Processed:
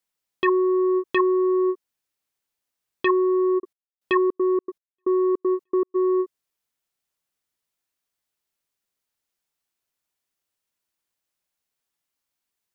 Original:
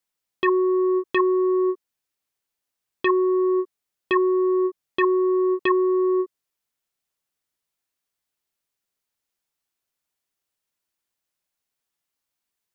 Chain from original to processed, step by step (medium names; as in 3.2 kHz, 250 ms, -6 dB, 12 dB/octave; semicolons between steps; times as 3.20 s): 3.58–5.94 s: trance gate "x.xx.x...xx" 157 bpm -60 dB